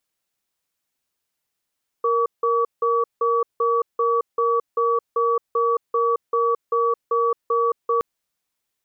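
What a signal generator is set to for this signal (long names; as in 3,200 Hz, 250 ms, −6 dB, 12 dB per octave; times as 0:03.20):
tone pair in a cadence 467 Hz, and 1,140 Hz, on 0.22 s, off 0.17 s, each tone −19.5 dBFS 5.97 s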